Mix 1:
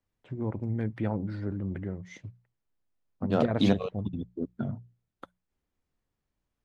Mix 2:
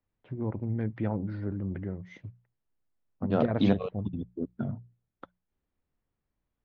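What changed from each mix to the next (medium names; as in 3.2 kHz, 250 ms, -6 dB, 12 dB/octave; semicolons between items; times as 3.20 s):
master: add distance through air 210 m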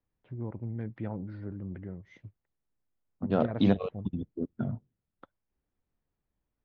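first voice -6.0 dB; master: remove hum notches 60/120/180 Hz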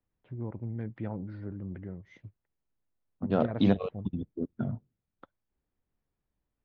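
no change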